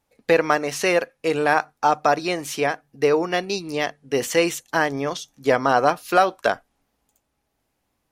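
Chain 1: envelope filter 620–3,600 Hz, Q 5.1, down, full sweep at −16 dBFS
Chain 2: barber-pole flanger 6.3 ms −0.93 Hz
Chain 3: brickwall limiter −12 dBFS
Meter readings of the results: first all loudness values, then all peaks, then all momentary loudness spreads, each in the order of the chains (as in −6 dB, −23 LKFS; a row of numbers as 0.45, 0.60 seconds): −29.5, −25.5, −25.0 LKFS; −11.0, −6.0, −12.0 dBFS; 15, 8, 4 LU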